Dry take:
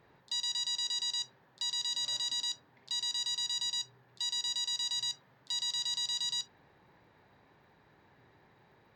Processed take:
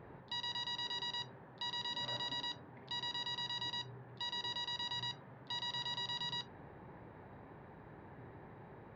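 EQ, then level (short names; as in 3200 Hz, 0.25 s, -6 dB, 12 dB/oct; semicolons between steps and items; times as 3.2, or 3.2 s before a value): air absorption 70 m; tape spacing loss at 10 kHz 44 dB; +12.5 dB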